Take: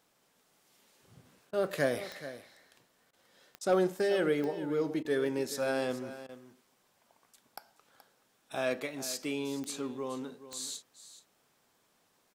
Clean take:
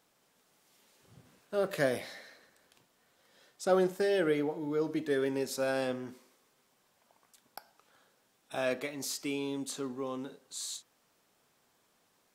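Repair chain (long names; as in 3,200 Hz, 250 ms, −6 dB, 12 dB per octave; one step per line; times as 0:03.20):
clipped peaks rebuilt −17.5 dBFS
click removal
repair the gap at 0:01.51/0:03.11/0:03.59/0:05.03/0:06.27, 19 ms
echo removal 426 ms −14 dB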